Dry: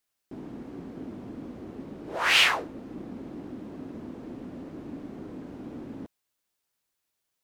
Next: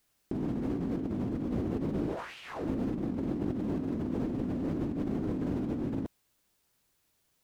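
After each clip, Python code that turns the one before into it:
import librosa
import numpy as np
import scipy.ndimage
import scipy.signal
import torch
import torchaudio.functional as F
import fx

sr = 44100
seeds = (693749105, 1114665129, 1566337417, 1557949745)

y = fx.low_shelf(x, sr, hz=310.0, db=9.5)
y = fx.over_compress(y, sr, threshold_db=-37.0, ratio=-1.0)
y = y * librosa.db_to_amplitude(2.5)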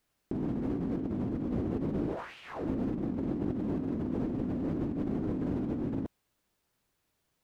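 y = fx.high_shelf(x, sr, hz=3300.0, db=-7.5)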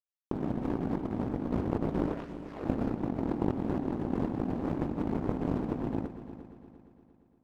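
y = fx.power_curve(x, sr, exponent=2.0)
y = fx.echo_heads(y, sr, ms=116, heads='first and third', feedback_pct=57, wet_db=-14)
y = y * librosa.db_to_amplitude(8.5)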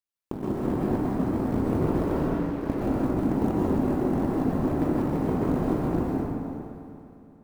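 y = fx.quant_float(x, sr, bits=4)
y = fx.rev_plate(y, sr, seeds[0], rt60_s=2.1, hf_ratio=0.5, predelay_ms=115, drr_db=-5.5)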